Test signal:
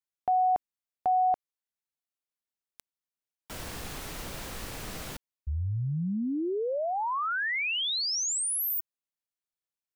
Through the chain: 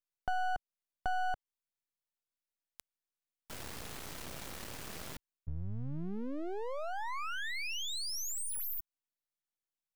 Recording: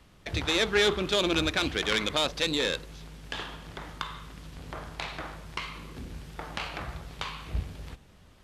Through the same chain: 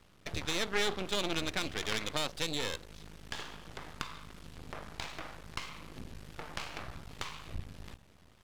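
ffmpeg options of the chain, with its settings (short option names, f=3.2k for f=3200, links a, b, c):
-filter_complex "[0:a]highpass=50,asplit=2[a][b];[b]acompressor=threshold=-41dB:ratio=6:attack=97:release=325:detection=peak,volume=0dB[c];[a][c]amix=inputs=2:normalize=0,aeval=exprs='max(val(0),0)':c=same,volume=-6.5dB"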